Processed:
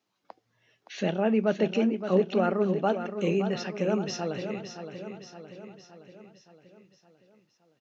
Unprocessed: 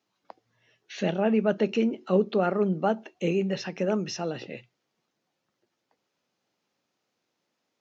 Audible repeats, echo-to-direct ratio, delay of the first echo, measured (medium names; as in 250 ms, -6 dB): 6, -7.5 dB, 568 ms